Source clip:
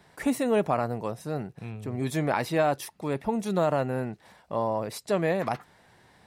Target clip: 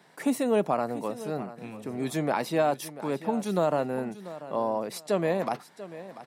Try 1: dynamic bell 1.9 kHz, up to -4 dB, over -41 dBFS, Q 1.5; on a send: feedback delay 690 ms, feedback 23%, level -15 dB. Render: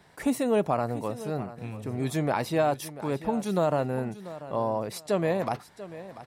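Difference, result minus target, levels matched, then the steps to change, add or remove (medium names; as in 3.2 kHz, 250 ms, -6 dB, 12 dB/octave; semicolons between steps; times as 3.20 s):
125 Hz band +4.5 dB
add after dynamic bell: high-pass 160 Hz 24 dB/octave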